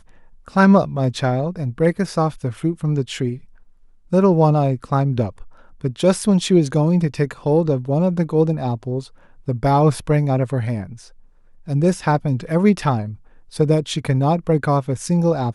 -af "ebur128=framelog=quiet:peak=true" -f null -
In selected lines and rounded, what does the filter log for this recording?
Integrated loudness:
  I:         -19.0 LUFS
  Threshold: -29.6 LUFS
Loudness range:
  LRA:         2.9 LU
  Threshold: -39.8 LUFS
  LRA low:   -21.4 LUFS
  LRA high:  -18.4 LUFS
True peak:
  Peak:       -1.8 dBFS